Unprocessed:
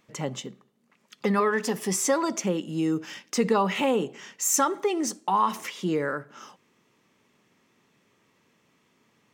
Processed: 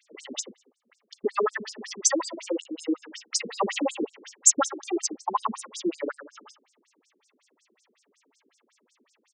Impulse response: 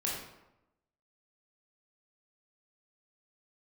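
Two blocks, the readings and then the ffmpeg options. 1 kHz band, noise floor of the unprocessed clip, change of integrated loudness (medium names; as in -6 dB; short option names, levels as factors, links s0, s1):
-4.5 dB, -68 dBFS, -1.5 dB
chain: -filter_complex "[0:a]aemphasis=mode=production:type=50fm,asplit=2[s0][s1];[s1]adelay=105,lowpass=f=3100:p=1,volume=0.224,asplit=2[s2][s3];[s3]adelay=105,lowpass=f=3100:p=1,volume=0.25,asplit=2[s4][s5];[s5]adelay=105,lowpass=f=3100:p=1,volume=0.25[s6];[s0][s2][s4][s6]amix=inputs=4:normalize=0,afftfilt=real='re*between(b*sr/1024,290*pow(6900/290,0.5+0.5*sin(2*PI*5.4*pts/sr))/1.41,290*pow(6900/290,0.5+0.5*sin(2*PI*5.4*pts/sr))*1.41)':imag='im*between(b*sr/1024,290*pow(6900/290,0.5+0.5*sin(2*PI*5.4*pts/sr))/1.41,290*pow(6900/290,0.5+0.5*sin(2*PI*5.4*pts/sr))*1.41)':win_size=1024:overlap=0.75,volume=1.68"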